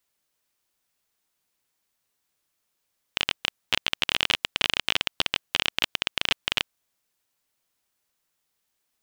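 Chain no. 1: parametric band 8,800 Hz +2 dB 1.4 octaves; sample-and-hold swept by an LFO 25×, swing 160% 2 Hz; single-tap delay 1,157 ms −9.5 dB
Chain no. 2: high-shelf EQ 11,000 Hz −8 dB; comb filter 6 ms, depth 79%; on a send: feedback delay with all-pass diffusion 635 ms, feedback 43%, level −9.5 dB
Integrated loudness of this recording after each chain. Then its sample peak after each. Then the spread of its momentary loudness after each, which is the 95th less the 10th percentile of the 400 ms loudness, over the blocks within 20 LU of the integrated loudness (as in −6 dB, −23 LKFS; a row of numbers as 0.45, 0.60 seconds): −28.5, −24.5 LKFS; −3.0, −3.0 dBFS; 15, 16 LU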